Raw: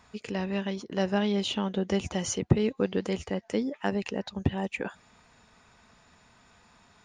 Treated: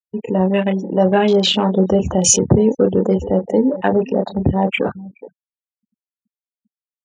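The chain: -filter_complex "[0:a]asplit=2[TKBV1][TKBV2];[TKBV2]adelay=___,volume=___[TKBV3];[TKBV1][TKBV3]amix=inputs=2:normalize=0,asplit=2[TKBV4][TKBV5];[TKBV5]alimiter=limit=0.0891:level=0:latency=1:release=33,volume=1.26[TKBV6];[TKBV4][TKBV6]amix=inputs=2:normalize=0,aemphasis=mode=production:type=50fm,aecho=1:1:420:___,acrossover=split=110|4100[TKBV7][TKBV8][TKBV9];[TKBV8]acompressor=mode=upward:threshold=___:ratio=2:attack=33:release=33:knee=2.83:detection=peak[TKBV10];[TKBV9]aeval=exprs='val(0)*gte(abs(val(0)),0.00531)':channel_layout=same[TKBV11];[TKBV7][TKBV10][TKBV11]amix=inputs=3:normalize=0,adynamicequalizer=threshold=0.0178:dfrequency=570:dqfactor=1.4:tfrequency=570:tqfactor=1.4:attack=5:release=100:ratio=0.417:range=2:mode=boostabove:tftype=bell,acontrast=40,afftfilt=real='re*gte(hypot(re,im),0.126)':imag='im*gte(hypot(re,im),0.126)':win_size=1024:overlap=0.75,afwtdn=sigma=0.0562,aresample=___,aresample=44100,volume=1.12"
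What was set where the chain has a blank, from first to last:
27, 0.501, 0.112, 0.0224, 22050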